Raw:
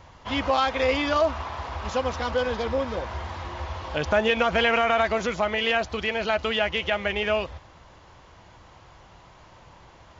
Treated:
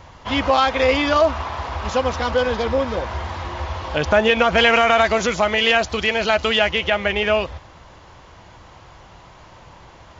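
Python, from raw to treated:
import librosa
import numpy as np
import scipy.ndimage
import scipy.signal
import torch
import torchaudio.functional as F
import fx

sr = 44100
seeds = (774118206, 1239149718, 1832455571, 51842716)

y = fx.high_shelf(x, sr, hz=5300.0, db=10.0, at=(4.57, 6.72))
y = y * librosa.db_to_amplitude(6.0)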